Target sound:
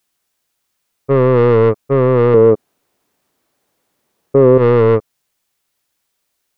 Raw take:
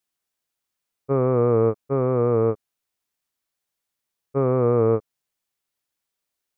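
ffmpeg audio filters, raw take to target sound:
-filter_complex "[0:a]asoftclip=type=tanh:threshold=-18dB,asettb=1/sr,asplit=3[a][b][c];[a]atrim=end=2.344[d];[b]atrim=start=2.34:end=4.58,asetpts=PTS-STARTPTS,afade=t=in:d=0.004:c=qsin,afade=t=out:st=2.236:d=0.004:c=qsin,equalizer=f=340:w=0.31:g=14.5[e];[c]atrim=start=4.576[f];[d][e]acrossfade=d=0.004:c1=hsin:c2=qsin[g];[g][f]acrossfade=d=0.004:c1=qsin:c2=hsin,alimiter=level_in=13dB:limit=-1dB:release=50:level=0:latency=1,volume=-1dB"

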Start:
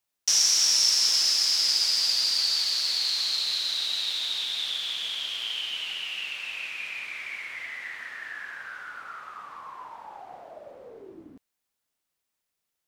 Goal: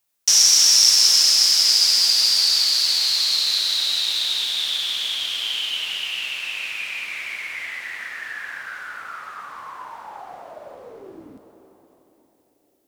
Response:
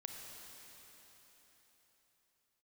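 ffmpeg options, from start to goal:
-filter_complex "[0:a]asplit=2[a][b];[1:a]atrim=start_sample=2205,highshelf=f=6.3k:g=11[c];[b][c]afir=irnorm=-1:irlink=0,volume=2.5dB[d];[a][d]amix=inputs=2:normalize=0"

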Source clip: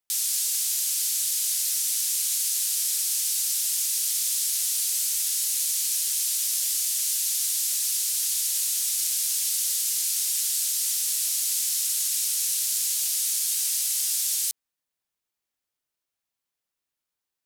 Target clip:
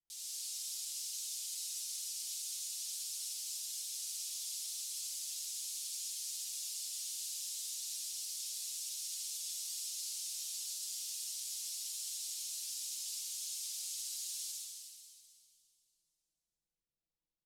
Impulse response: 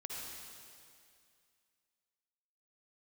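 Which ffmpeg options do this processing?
-filter_complex "[0:a]aemphasis=mode=reproduction:type=bsi,aecho=1:1:6:0.93,acrossover=split=870|2900[a][b][c];[b]acrusher=bits=3:mix=0:aa=0.5[d];[a][d][c]amix=inputs=3:normalize=0[e];[1:a]atrim=start_sample=2205[f];[e][f]afir=irnorm=-1:irlink=0,volume=-8dB"

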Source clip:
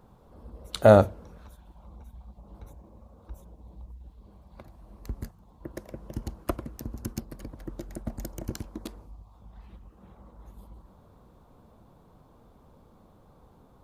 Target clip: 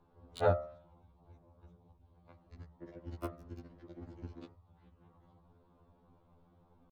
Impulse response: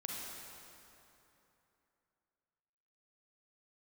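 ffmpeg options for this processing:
-filter_complex "[0:a]atempo=2,bandreject=f=75.75:t=h:w=4,bandreject=f=151.5:t=h:w=4,bandreject=f=227.25:t=h:w=4,bandreject=f=303:t=h:w=4,bandreject=f=378.75:t=h:w=4,bandreject=f=454.5:t=h:w=4,bandreject=f=530.25:t=h:w=4,bandreject=f=606:t=h:w=4,bandreject=f=681.75:t=h:w=4,bandreject=f=757.5:t=h:w=4,bandreject=f=833.25:t=h:w=4,bandreject=f=909:t=h:w=4,bandreject=f=984.75:t=h:w=4,bandreject=f=1.0605k:t=h:w=4,bandreject=f=1.13625k:t=h:w=4,bandreject=f=1.212k:t=h:w=4,bandreject=f=1.28775k:t=h:w=4,bandreject=f=1.3635k:t=h:w=4,bandreject=f=1.43925k:t=h:w=4,bandreject=f=1.515k:t=h:w=4,bandreject=f=1.59075k:t=h:w=4,bandreject=f=1.6665k:t=h:w=4,bandreject=f=1.74225k:t=h:w=4,bandreject=f=1.818k:t=h:w=4,bandreject=f=1.89375k:t=h:w=4,bandreject=f=1.9695k:t=h:w=4,bandreject=f=2.04525k:t=h:w=4,bandreject=f=2.121k:t=h:w=4,bandreject=f=2.19675k:t=h:w=4,bandreject=f=2.2725k:t=h:w=4,acrossover=split=740|4600[a][b][c];[c]acrusher=bits=4:mix=0:aa=0.5[d];[a][b][d]amix=inputs=3:normalize=0,afftfilt=real='re*2*eq(mod(b,4),0)':imag='im*2*eq(mod(b,4),0)':win_size=2048:overlap=0.75,volume=-6dB"

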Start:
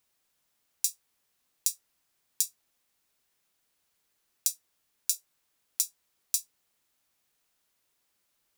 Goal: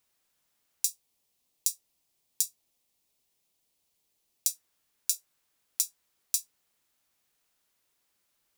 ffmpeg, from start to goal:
-filter_complex "[0:a]asettb=1/sr,asplit=3[a][b][c];[a]atrim=end=0.854[d];[b]atrim=start=0.85:end=4.47,asetpts=PTS-STARTPTS,afade=t=in:d=0.004:c=qsin,afade=t=out:st=3.616:d=0.004:c=qsin,equalizer=f=1.5k:t=o:w=0.93:g=-11[e];[c]atrim=start=4.466[f];[d][e]acrossfade=d=0.004:c1=hsin:c2=qsin[g];[g][f]acrossfade=d=0.004:c1=qsin:c2=hsin"

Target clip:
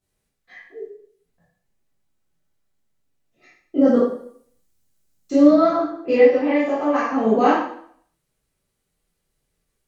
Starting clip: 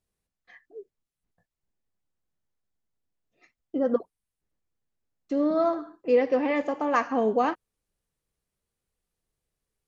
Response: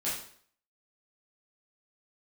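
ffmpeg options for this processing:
-filter_complex "[0:a]asettb=1/sr,asplit=3[a][b][c];[a]atrim=end=3.794[d];[b]atrim=start=3.79:end=5.52,asetpts=PTS-STARTPTS,afade=t=in:d=0.004:c=qsin,afade=t=out:st=1.726:d=0.004:c=qsin,bass=f=250:g=4,treble=f=4k:g=11[e];[c]atrim=start=5.516[f];[d][e]acrossfade=d=0.004:c1=hsin:c2=qsin[g];[g][f]acrossfade=d=0.004:c1=qsin:c2=hsin,asettb=1/sr,asplit=3[h][i][j];[h]atrim=end=6.194[k];[i]atrim=start=6.19:end=7.25,asetpts=PTS-STARTPTS,afade=t=in:d=0.004:c=qsin,afade=t=out:st=1.056:d=0.004:c=qsin,acompressor=threshold=-27dB:ratio=6[l];[j]atrim=start=7.246[m];[k][l]acrossfade=d=0.004:c1=hsin:c2=qsin[n];[n][m]acrossfade=d=0.004:c1=qsin:c2=hsin[o];[1:a]atrim=start_sample=2205,asetrate=40572,aresample=44100[p];[o][p]afir=irnorm=-1:irlink=0,volume=3.5dB"

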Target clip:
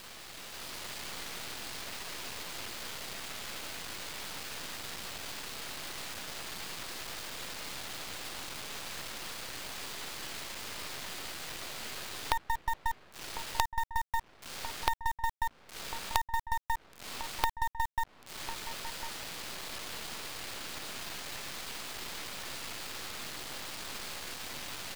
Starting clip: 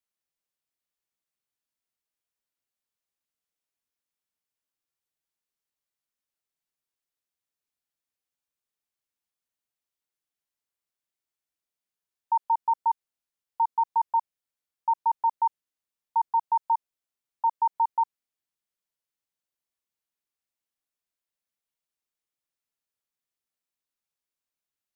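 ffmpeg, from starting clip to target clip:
-filter_complex "[0:a]aeval=exprs='val(0)+0.5*0.00944*sgn(val(0))':c=same,acompressor=threshold=-41dB:ratio=12,aresample=11025,aresample=44100,acrusher=bits=6:dc=4:mix=0:aa=0.000001,asplit=2[a][b];[b]adelay=1050,volume=-11dB,highshelf=f=4k:g=-23.6[c];[a][c]amix=inputs=2:normalize=0,dynaudnorm=f=220:g=5:m=6.5dB,volume=8.5dB"

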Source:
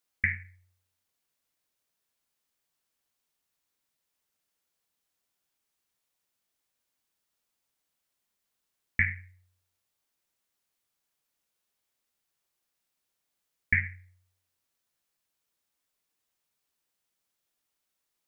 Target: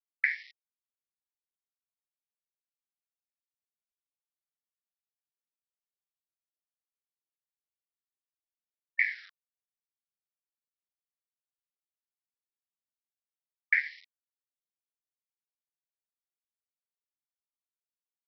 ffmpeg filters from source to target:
-filter_complex "[0:a]equalizer=f=370:w=2.5:g=10.5,asplit=4[a][b][c][d];[b]adelay=85,afreqshift=-52,volume=-22.5dB[e];[c]adelay=170,afreqshift=-104,volume=-30dB[f];[d]adelay=255,afreqshift=-156,volume=-37.6dB[g];[a][e][f][g]amix=inputs=4:normalize=0,acrossover=split=500|3000[h][i][j];[h]acompressor=threshold=-32dB:ratio=5[k];[k][i][j]amix=inputs=3:normalize=0,aresample=11025,acrusher=bits=7:mix=0:aa=0.000001,aresample=44100,afftfilt=real='re*gte(b*sr/1024,330*pow(2000/330,0.5+0.5*sin(2*PI*0.37*pts/sr)))':imag='im*gte(b*sr/1024,330*pow(2000/330,0.5+0.5*sin(2*PI*0.37*pts/sr)))':win_size=1024:overlap=0.75"

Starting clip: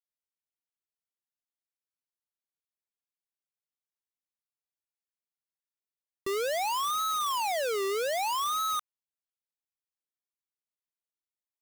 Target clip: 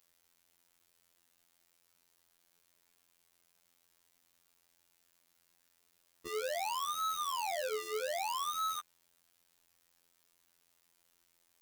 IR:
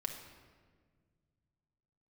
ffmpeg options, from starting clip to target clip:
-af "aeval=exprs='val(0)+0.5*0.00168*sgn(val(0))':c=same,afftfilt=real='hypot(re,im)*cos(PI*b)':imag='0':win_size=2048:overlap=0.75,volume=-3.5dB"

